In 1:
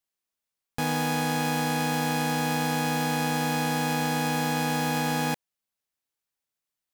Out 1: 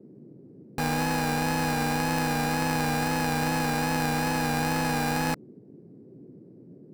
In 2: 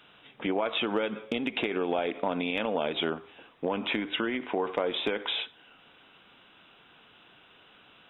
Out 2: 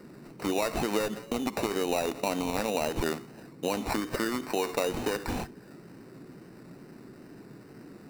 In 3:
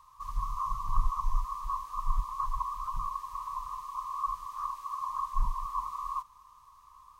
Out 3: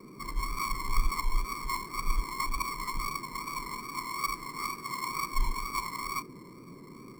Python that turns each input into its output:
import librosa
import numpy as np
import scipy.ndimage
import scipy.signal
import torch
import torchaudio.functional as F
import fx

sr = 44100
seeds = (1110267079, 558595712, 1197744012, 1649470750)

y = fx.sample_hold(x, sr, seeds[0], rate_hz=3300.0, jitter_pct=0)
y = fx.wow_flutter(y, sr, seeds[1], rate_hz=2.1, depth_cents=43.0)
y = fx.dmg_noise_band(y, sr, seeds[2], low_hz=120.0, high_hz=400.0, level_db=-49.0)